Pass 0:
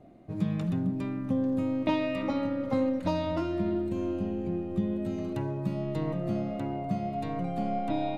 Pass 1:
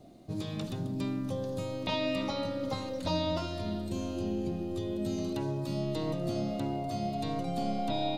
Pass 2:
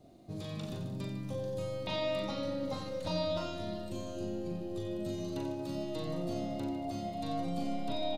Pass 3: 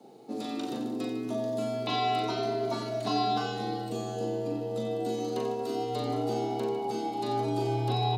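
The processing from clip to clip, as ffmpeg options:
ffmpeg -i in.wav -filter_complex "[0:a]highshelf=frequency=3000:width_type=q:width=1.5:gain=12,afftfilt=real='re*lt(hypot(re,im),0.282)':imag='im*lt(hypot(re,im),0.282)':win_size=1024:overlap=0.75,acrossover=split=3700[link_01][link_02];[link_02]acompressor=threshold=-47dB:ratio=4:attack=1:release=60[link_03];[link_01][link_03]amix=inputs=2:normalize=0" out.wav
ffmpeg -i in.wav -af "aecho=1:1:40|90|152.5|230.6|328.3:0.631|0.398|0.251|0.158|0.1,volume=-5.5dB" out.wav
ffmpeg -i in.wav -af "afreqshift=120,volume=5.5dB" out.wav

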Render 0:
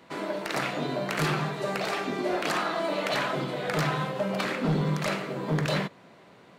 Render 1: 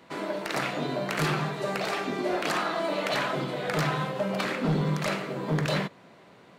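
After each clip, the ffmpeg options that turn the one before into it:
ffmpeg -i in.wav -af anull out.wav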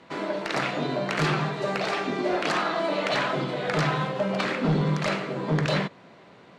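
ffmpeg -i in.wav -af "lowpass=6500,volume=2.5dB" out.wav

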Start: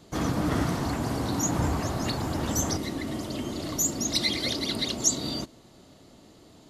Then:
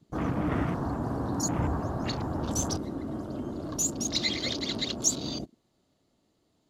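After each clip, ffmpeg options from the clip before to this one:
ffmpeg -i in.wav -af "afwtdn=0.0141,volume=-2dB" out.wav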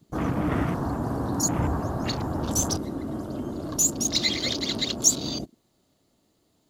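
ffmpeg -i in.wav -af "highshelf=frequency=9500:gain=11.5,volume=3dB" out.wav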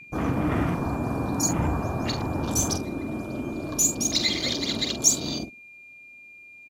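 ffmpeg -i in.wav -filter_complex "[0:a]aeval=exprs='val(0)+0.00708*sin(2*PI*2400*n/s)':channel_layout=same,asplit=2[link_01][link_02];[link_02]adelay=46,volume=-9.5dB[link_03];[link_01][link_03]amix=inputs=2:normalize=0" out.wav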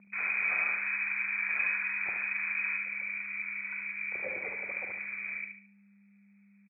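ffmpeg -i in.wav -filter_complex "[0:a]asplit=2[link_01][link_02];[link_02]aecho=0:1:72|144|216|288:0.501|0.175|0.0614|0.0215[link_03];[link_01][link_03]amix=inputs=2:normalize=0,lowpass=frequency=2200:width_type=q:width=0.5098,lowpass=frequency=2200:width_type=q:width=0.6013,lowpass=frequency=2200:width_type=q:width=0.9,lowpass=frequency=2200:width_type=q:width=2.563,afreqshift=-2600,volume=-7dB" out.wav

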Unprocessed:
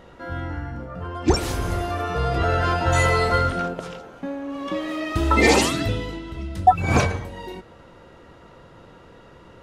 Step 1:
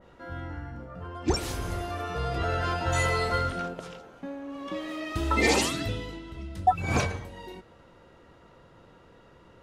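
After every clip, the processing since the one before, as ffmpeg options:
ffmpeg -i in.wav -af "adynamicequalizer=threshold=0.0224:dfrequency=2100:dqfactor=0.7:tfrequency=2100:tqfactor=0.7:attack=5:release=100:ratio=0.375:range=1.5:mode=boostabove:tftype=highshelf,volume=-7.5dB" out.wav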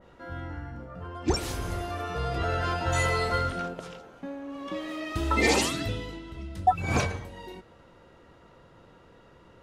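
ffmpeg -i in.wav -af anull out.wav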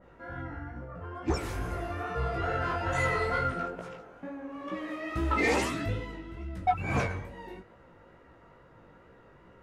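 ffmpeg -i in.wav -af "highshelf=frequency=2700:width_type=q:width=1.5:gain=-6.5,asoftclip=type=tanh:threshold=-17.5dB,flanger=delay=15:depth=5.8:speed=2.3,volume=1.5dB" out.wav

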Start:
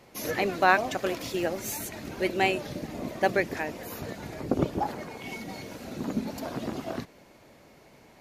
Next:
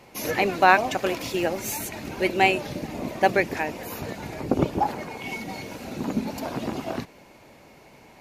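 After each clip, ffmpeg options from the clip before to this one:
ffmpeg -i in.wav -af "superequalizer=9b=1.41:12b=1.41,volume=3.5dB" out.wav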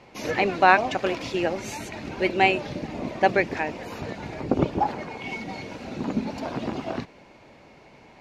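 ffmpeg -i in.wav -af "lowpass=5000" out.wav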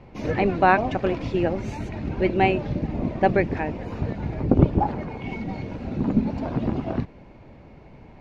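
ffmpeg -i in.wav -af "aemphasis=mode=reproduction:type=riaa,volume=-1.5dB" out.wav

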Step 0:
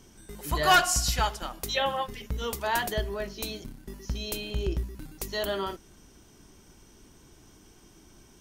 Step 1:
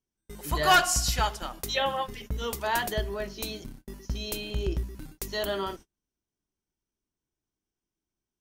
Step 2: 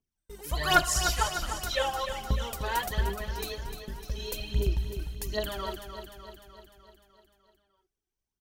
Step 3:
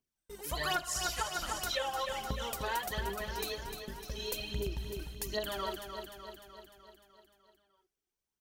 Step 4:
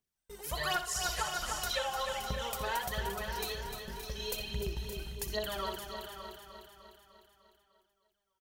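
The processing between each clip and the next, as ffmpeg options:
ffmpeg -i in.wav -af "agate=range=-35dB:threshold=-44dB:ratio=16:detection=peak" out.wav
ffmpeg -i in.wav -filter_complex "[0:a]aphaser=in_gain=1:out_gain=1:delay=2.7:decay=0.7:speed=1.3:type=triangular,asplit=2[link_01][link_02];[link_02]aecho=0:1:301|602|903|1204|1505|1806|2107:0.376|0.218|0.126|0.0733|0.0425|0.0247|0.0143[link_03];[link_01][link_03]amix=inputs=2:normalize=0,volume=-5.5dB" out.wav
ffmpeg -i in.wav -af "lowshelf=frequency=120:gain=-10.5,acompressor=threshold=-31dB:ratio=6" out.wav
ffmpeg -i in.wav -filter_complex "[0:a]equalizer=frequency=290:width_type=o:width=0.35:gain=-10.5,asplit=2[link_01][link_02];[link_02]aecho=0:1:61|84|297|570:0.224|0.126|0.112|0.299[link_03];[link_01][link_03]amix=inputs=2:normalize=0" out.wav

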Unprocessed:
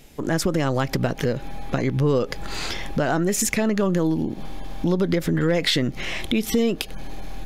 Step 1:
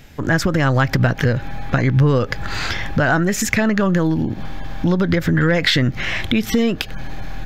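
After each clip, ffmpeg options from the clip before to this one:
ffmpeg -i in.wav -af "equalizer=frequency=100:width_type=o:width=0.67:gain=12,equalizer=frequency=400:width_type=o:width=0.67:gain=-4,equalizer=frequency=1600:width_type=o:width=0.67:gain=8,equalizer=frequency=10000:width_type=o:width=0.67:gain=-11,volume=4dB" out.wav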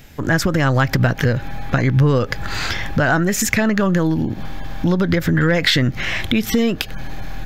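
ffmpeg -i in.wav -af "highshelf=frequency=9000:gain=7" out.wav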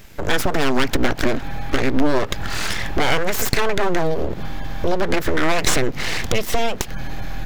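ffmpeg -i in.wav -af "aeval=exprs='abs(val(0))':channel_layout=same,volume=1dB" out.wav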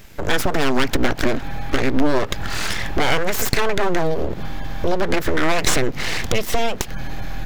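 ffmpeg -i in.wav -af anull out.wav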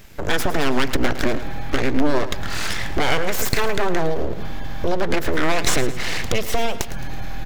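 ffmpeg -i in.wav -af "aecho=1:1:109|218|327|436:0.2|0.0918|0.0422|0.0194,volume=-1.5dB" out.wav

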